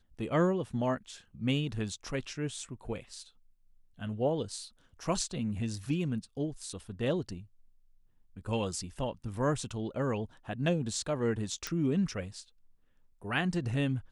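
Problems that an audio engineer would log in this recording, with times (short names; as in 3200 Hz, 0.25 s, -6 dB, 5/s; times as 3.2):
11.67 pop -18 dBFS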